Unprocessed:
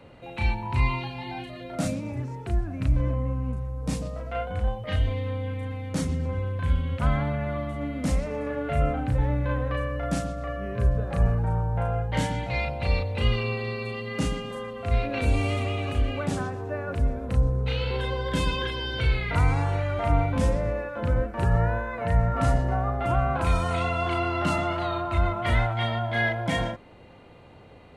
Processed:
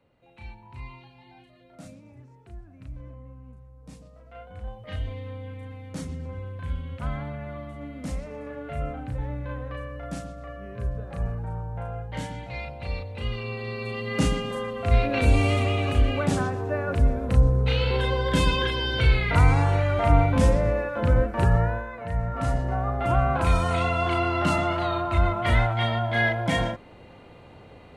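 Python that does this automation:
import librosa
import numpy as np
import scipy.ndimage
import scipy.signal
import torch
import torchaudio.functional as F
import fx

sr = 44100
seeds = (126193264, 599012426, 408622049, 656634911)

y = fx.gain(x, sr, db=fx.line((4.12, -17.0), (4.95, -7.0), (13.29, -7.0), (14.18, 4.0), (21.4, 4.0), (22.04, -6.5), (23.16, 2.0)))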